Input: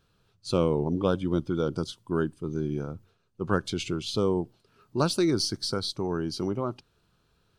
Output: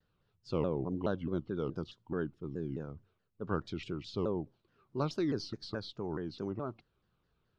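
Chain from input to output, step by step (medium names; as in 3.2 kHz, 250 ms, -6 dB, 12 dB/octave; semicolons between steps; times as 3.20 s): distance through air 190 m; vibrato with a chosen wave saw down 4.7 Hz, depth 250 cents; trim -8 dB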